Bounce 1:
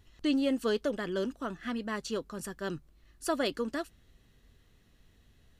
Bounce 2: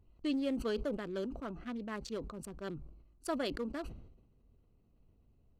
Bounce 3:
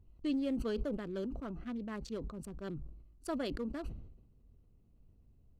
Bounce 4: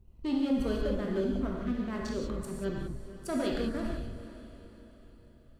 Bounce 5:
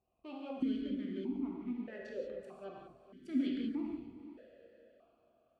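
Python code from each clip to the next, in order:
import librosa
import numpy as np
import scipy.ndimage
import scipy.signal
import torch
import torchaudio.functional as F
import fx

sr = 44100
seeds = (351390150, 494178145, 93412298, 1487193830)

y1 = fx.wiener(x, sr, points=25)
y1 = fx.sustainer(y1, sr, db_per_s=63.0)
y1 = y1 * librosa.db_to_amplitude(-5.5)
y2 = fx.low_shelf(y1, sr, hz=280.0, db=8.5)
y2 = y2 * librosa.db_to_amplitude(-4.0)
y3 = fx.leveller(y2, sr, passes=1)
y3 = fx.echo_diffused(y3, sr, ms=450, feedback_pct=48, wet_db=-14)
y3 = fx.rev_gated(y3, sr, seeds[0], gate_ms=210, shape='flat', drr_db=-1.5)
y4 = fx.vowel_held(y3, sr, hz=1.6)
y4 = y4 * librosa.db_to_amplitude(4.0)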